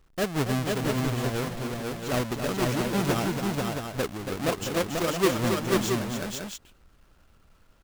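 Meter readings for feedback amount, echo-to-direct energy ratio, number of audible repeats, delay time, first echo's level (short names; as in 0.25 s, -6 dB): no steady repeat, -0.5 dB, 3, 0.279 s, -7.5 dB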